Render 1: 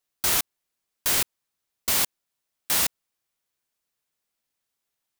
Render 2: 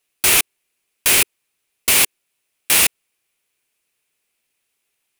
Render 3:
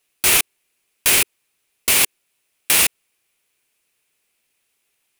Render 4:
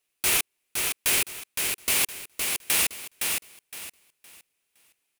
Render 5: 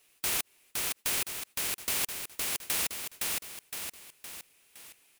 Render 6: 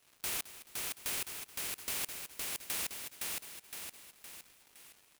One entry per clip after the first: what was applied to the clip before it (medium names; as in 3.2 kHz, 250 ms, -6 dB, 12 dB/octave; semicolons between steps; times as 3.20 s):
fifteen-band graphic EQ 400 Hz +6 dB, 2.5 kHz +11 dB, 10 kHz +7 dB; trim +5 dB
peak limiter -7.5 dBFS, peak gain reduction 6 dB; trim +3 dB
feedback delay 514 ms, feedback 26%, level -4.5 dB; trim -8 dB
spectrum-flattening compressor 2:1; trim -4.5 dB
feedback delay 215 ms, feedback 45%, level -15 dB; crackle 310 per s -43 dBFS; trim -6.5 dB